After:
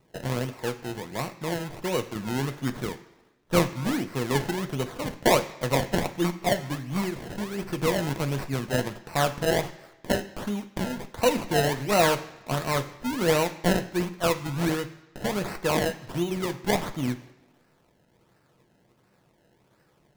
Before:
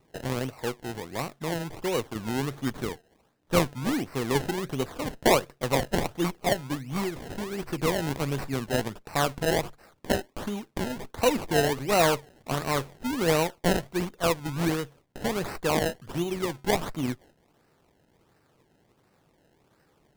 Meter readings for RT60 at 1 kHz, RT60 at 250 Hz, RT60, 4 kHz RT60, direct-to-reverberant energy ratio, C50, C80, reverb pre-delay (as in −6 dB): 1.1 s, 0.95 s, 1.1 s, 1.0 s, 6.5 dB, 13.5 dB, 16.0 dB, 3 ms